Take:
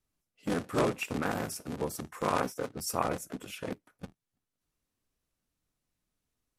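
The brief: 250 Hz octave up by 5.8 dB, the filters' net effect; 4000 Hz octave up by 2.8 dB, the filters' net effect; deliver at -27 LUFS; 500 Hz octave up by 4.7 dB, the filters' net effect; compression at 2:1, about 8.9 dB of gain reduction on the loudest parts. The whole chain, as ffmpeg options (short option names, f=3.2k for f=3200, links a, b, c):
-af "equalizer=f=250:t=o:g=6,equalizer=f=500:t=o:g=4,equalizer=f=4k:t=o:g=4,acompressor=threshold=-36dB:ratio=2,volume=10dB"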